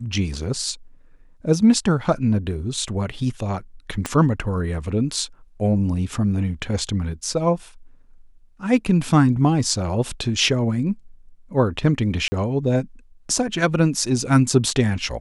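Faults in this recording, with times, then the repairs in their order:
4.06 s: pop -9 dBFS
12.28–12.32 s: dropout 40 ms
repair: de-click; interpolate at 12.28 s, 40 ms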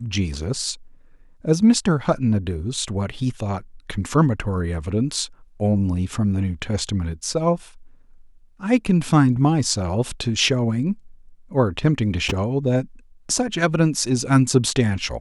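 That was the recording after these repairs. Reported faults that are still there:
4.06 s: pop

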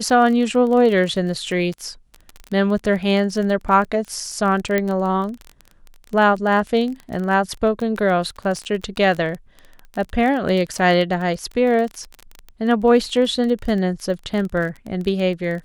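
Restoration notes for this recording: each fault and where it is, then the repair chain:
crackle 23 per s -25 dBFS
4.78 s: pop -7 dBFS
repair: de-click

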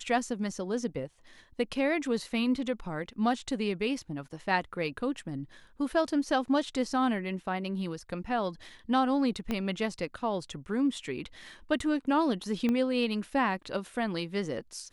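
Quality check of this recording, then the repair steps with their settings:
9.51 s: pop -18 dBFS
12.69 s: pop -18 dBFS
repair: de-click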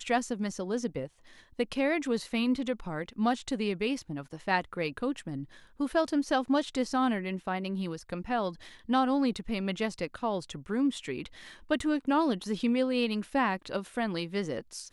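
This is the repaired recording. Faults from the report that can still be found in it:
9.51 s: pop
12.69 s: pop

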